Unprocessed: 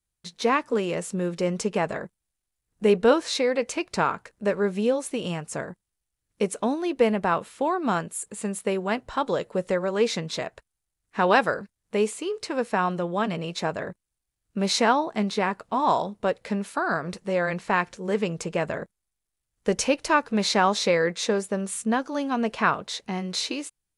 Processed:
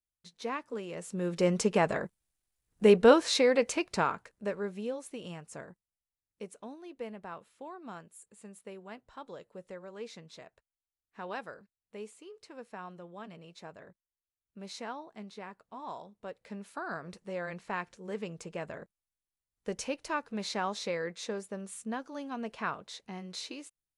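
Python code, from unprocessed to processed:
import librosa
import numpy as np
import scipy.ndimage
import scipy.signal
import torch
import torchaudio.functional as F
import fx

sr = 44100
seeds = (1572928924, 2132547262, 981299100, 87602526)

y = fx.gain(x, sr, db=fx.line((0.89, -13.5), (1.44, -1.0), (3.6, -1.0), (4.81, -13.0), (5.69, -13.0), (6.68, -20.0), (16.11, -20.0), (16.79, -12.5)))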